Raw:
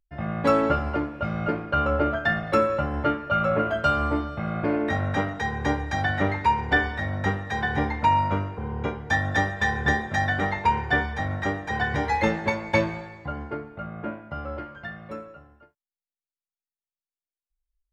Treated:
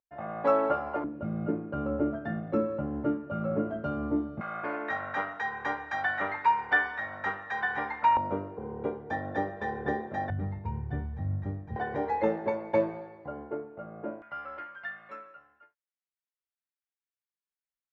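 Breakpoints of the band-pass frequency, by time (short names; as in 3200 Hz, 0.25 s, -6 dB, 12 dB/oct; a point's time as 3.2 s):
band-pass, Q 1.3
760 Hz
from 1.04 s 260 Hz
from 4.41 s 1300 Hz
from 8.17 s 430 Hz
from 10.3 s 110 Hz
from 11.76 s 480 Hz
from 14.22 s 1700 Hz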